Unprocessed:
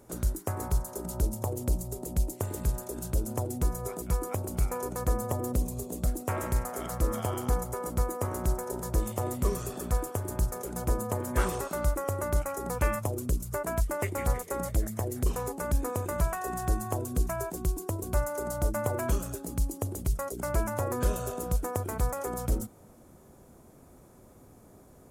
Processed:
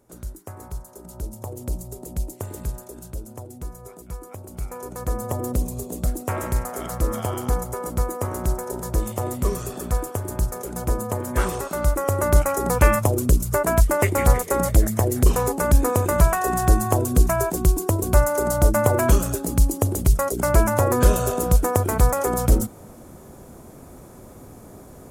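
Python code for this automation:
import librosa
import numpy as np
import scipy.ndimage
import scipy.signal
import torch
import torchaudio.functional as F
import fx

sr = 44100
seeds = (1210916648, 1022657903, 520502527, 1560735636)

y = fx.gain(x, sr, db=fx.line((1.0, -5.5), (1.76, 0.5), (2.61, 0.5), (3.34, -6.0), (4.34, -6.0), (5.4, 5.0), (11.65, 5.0), (12.36, 11.5)))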